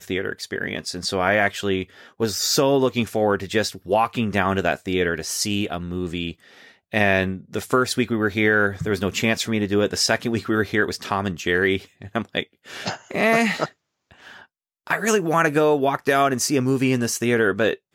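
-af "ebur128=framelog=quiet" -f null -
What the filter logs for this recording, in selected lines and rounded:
Integrated loudness:
  I:         -21.8 LUFS
  Threshold: -32.1 LUFS
Loudness range:
  LRA:         3.0 LU
  Threshold: -42.2 LUFS
  LRA low:   -24.0 LUFS
  LRA high:  -21.0 LUFS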